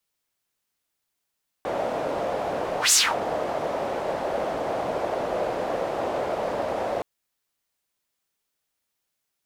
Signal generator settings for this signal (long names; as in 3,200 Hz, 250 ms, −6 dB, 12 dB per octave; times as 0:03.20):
pass-by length 5.37 s, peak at 0:01.27, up 0.13 s, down 0.26 s, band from 610 Hz, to 7,700 Hz, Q 2.9, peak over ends 11 dB